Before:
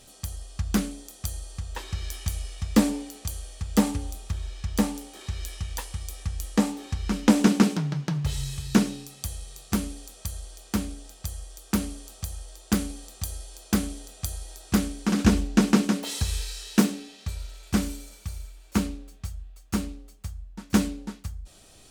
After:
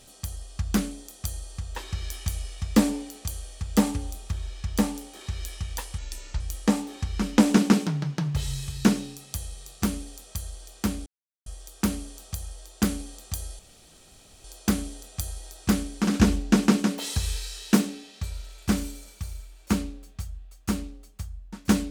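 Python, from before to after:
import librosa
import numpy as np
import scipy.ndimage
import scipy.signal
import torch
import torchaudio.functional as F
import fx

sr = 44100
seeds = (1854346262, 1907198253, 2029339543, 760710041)

y = fx.edit(x, sr, fx.speed_span(start_s=5.98, length_s=0.32, speed=0.76),
    fx.silence(start_s=10.96, length_s=0.4),
    fx.insert_room_tone(at_s=13.49, length_s=0.85), tone=tone)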